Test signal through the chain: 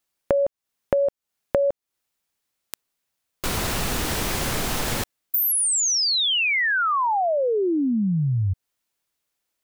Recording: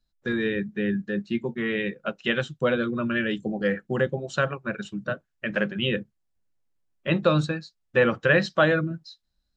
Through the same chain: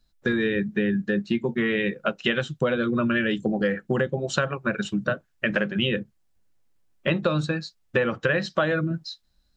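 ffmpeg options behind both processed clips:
-af "acompressor=threshold=0.0355:ratio=6,volume=2.66"

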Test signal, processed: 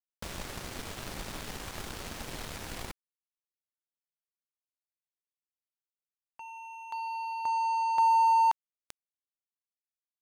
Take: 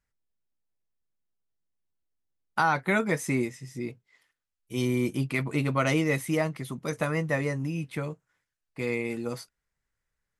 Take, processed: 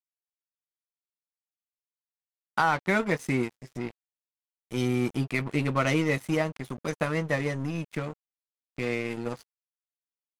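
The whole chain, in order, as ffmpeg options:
-filter_complex "[0:a]asplit=2[s0][s1];[s1]acompressor=threshold=0.01:ratio=5,volume=1.33[s2];[s0][s2]amix=inputs=2:normalize=0,aeval=exprs='sgn(val(0))*max(abs(val(0))-0.0168,0)':c=same,highshelf=f=11000:g=-9.5"

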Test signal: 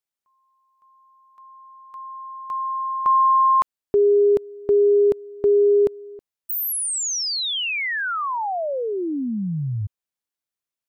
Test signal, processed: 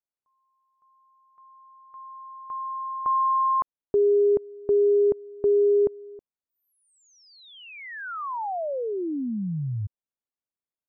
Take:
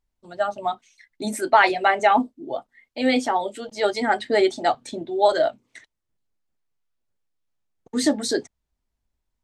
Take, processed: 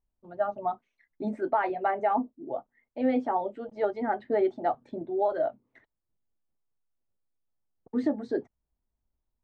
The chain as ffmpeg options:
-af "lowpass=1100,alimiter=limit=0.237:level=0:latency=1:release=494,volume=0.668"

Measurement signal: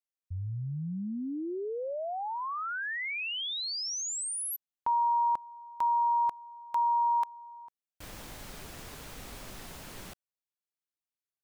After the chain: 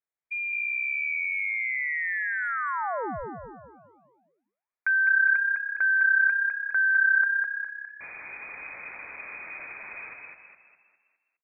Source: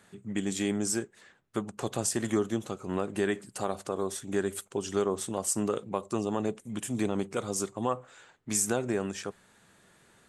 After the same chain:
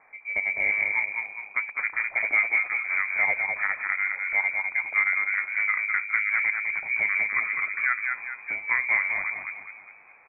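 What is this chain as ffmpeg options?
-filter_complex "[0:a]lowpass=f=2100:t=q:w=0.5098,lowpass=f=2100:t=q:w=0.6013,lowpass=f=2100:t=q:w=0.9,lowpass=f=2100:t=q:w=2.563,afreqshift=-2500,asplit=7[s0][s1][s2][s3][s4][s5][s6];[s1]adelay=205,afreqshift=33,volume=0.631[s7];[s2]adelay=410,afreqshift=66,volume=0.292[s8];[s3]adelay=615,afreqshift=99,volume=0.133[s9];[s4]adelay=820,afreqshift=132,volume=0.0617[s10];[s5]adelay=1025,afreqshift=165,volume=0.0282[s11];[s6]adelay=1230,afreqshift=198,volume=0.013[s12];[s0][s7][s8][s9][s10][s11][s12]amix=inputs=7:normalize=0,volume=1.58"

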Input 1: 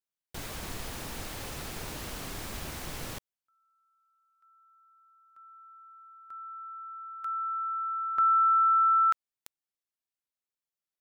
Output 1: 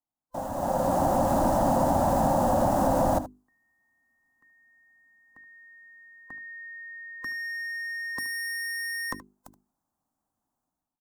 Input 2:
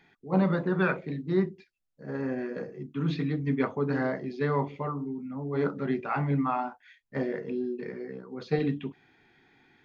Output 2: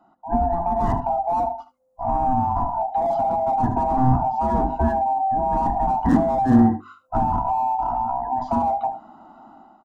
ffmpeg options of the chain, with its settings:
-filter_complex "[0:a]afftfilt=real='real(if(lt(b,1008),b+24*(1-2*mod(floor(b/24),2)),b),0)':imag='imag(if(lt(b,1008),b+24*(1-2*mod(floor(b/24),2)),b),0)':win_size=2048:overlap=0.75,bandreject=f=50:t=h:w=6,bandreject=f=100:t=h:w=6,bandreject=f=150:t=h:w=6,bandreject=f=200:t=h:w=6,bandreject=f=250:t=h:w=6,bandreject=f=300:t=h:w=6,bandreject=f=350:t=h:w=6,bandreject=f=400:t=h:w=6,dynaudnorm=f=560:g=3:m=5.62,asoftclip=type=hard:threshold=0.126,firequalizer=gain_entry='entry(150,0);entry(260,7);entry(430,-11);entry(770,3);entry(2200,-25);entry(6900,-7)':delay=0.05:min_phase=1,aecho=1:1:75:0.158,acrossover=split=320[s0][s1];[s1]acompressor=threshold=0.0447:ratio=6:attack=4.2:release=212:knee=2.83:detection=peak[s2];[s0][s2]amix=inputs=2:normalize=0,highshelf=f=3400:g=-10,volume=2.37"

